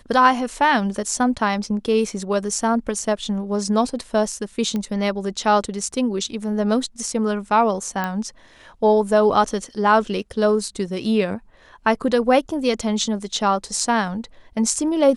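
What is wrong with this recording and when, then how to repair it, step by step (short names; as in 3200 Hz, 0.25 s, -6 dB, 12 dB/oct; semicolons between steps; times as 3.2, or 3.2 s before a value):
4.76 pop -14 dBFS
8.04 pop -11 dBFS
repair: de-click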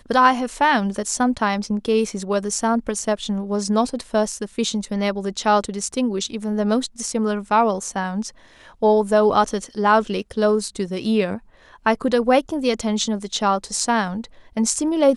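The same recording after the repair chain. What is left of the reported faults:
none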